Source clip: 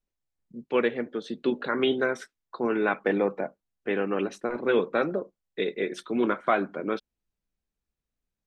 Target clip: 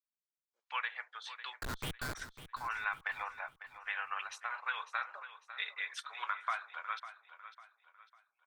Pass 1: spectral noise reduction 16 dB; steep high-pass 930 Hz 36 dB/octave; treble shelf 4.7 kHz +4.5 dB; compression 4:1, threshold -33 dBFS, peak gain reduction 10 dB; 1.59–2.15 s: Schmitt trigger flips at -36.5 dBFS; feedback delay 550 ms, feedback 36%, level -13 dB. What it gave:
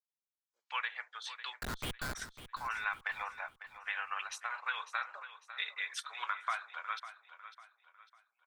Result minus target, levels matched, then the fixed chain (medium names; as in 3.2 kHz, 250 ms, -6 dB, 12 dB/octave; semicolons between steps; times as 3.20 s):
8 kHz band +3.0 dB
spectral noise reduction 16 dB; steep high-pass 930 Hz 36 dB/octave; treble shelf 4.7 kHz -4 dB; compression 4:1, threshold -33 dBFS, peak gain reduction 10 dB; 1.59–2.15 s: Schmitt trigger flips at -36.5 dBFS; feedback delay 550 ms, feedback 36%, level -13 dB